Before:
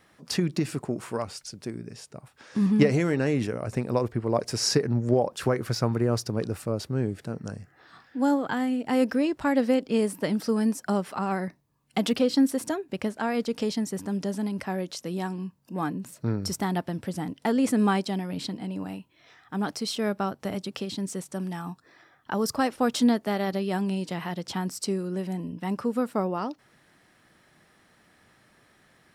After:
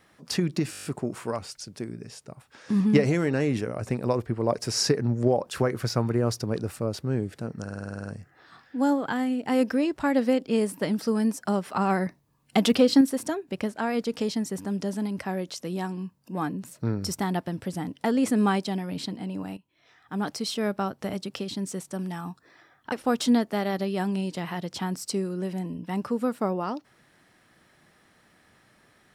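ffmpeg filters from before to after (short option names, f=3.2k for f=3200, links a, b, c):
-filter_complex "[0:a]asplit=21[a][b][c][d][e][f][g][h][i][j][k][l][m][n][o][p][q][r][s][t][u];[a]atrim=end=0.732[v];[b]atrim=start=0.708:end=0.732[w];[c]atrim=start=0.708:end=0.732[x];[d]atrim=start=0.708:end=0.732[y];[e]atrim=start=0.708:end=0.732[z];[f]atrim=start=0.708:end=0.732[aa];[g]atrim=start=0.708:end=0.732[ab];[h]atrim=start=0.708:end=7.532[ac];[i]atrim=start=7.478:end=7.532[ad];[j]atrim=start=7.478:end=7.532[ae];[k]atrim=start=7.478:end=7.532[af];[l]atrim=start=7.478:end=7.532[ag];[m]atrim=start=7.478:end=7.532[ah];[n]atrim=start=7.478:end=7.532[ai];[o]atrim=start=7.478:end=7.532[aj];[p]atrim=start=7.478:end=7.532[ak];[q]atrim=start=7.478:end=11.152[al];[r]atrim=start=11.148:end=12.422,asetpts=PTS-STARTPTS,volume=4dB[am];[s]atrim=start=12.418:end=18.98,asetpts=PTS-STARTPTS,afade=t=out:st=6.558:d=0.004:c=hsin:silence=0.211349[an];[t]atrim=start=18.98:end=22.332,asetpts=PTS-STARTPTS,afade=t=in:d=0.68:silence=0.211349[ao];[u]atrim=start=22.658[ap];[v][w]acrossfade=d=0.004:c1=hsin:c2=hsin[aq];[aq][x]acrossfade=d=0.004:c1=hsin:c2=hsin[ar];[ar][y]acrossfade=d=0.004:c1=hsin:c2=hsin[as];[as][z]acrossfade=d=0.004:c1=hsin:c2=hsin[at];[at][aa]acrossfade=d=0.004:c1=hsin:c2=hsin[au];[au][ab]acrossfade=d=0.004:c1=hsin:c2=hsin[av];[av][ac]acrossfade=d=0.004:c1=hsin:c2=hsin[aw];[aw][ad]acrossfade=d=0.004:c1=hsin:c2=hsin[ax];[ax][ae]acrossfade=d=0.004:c1=hsin:c2=hsin[ay];[ay][af]acrossfade=d=0.004:c1=hsin:c2=hsin[az];[az][ag]acrossfade=d=0.004:c1=hsin:c2=hsin[ba];[ba][ah]acrossfade=d=0.004:c1=hsin:c2=hsin[bb];[bb][ai]acrossfade=d=0.004:c1=hsin:c2=hsin[bc];[bc][aj]acrossfade=d=0.004:c1=hsin:c2=hsin[bd];[bd][ak]acrossfade=d=0.004:c1=hsin:c2=hsin[be];[be][al]acrossfade=d=0.004:c1=hsin:c2=hsin[bf];[bf][am]acrossfade=d=0.004:c1=hsin:c2=hsin[bg];[an][ao]concat=n=2:v=0:a=1[bh];[bg][bh]acrossfade=d=0.004:c1=hsin:c2=hsin[bi];[bi][ap]acrossfade=d=0.004:c1=hsin:c2=hsin"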